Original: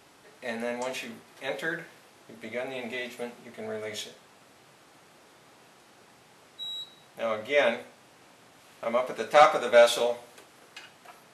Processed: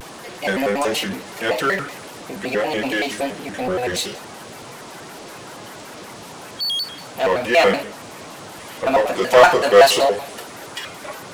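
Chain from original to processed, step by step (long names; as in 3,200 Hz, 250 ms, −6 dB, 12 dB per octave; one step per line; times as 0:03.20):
spectral magnitudes quantised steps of 15 dB
power curve on the samples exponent 0.7
pitch modulation by a square or saw wave square 5.3 Hz, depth 250 cents
level +6 dB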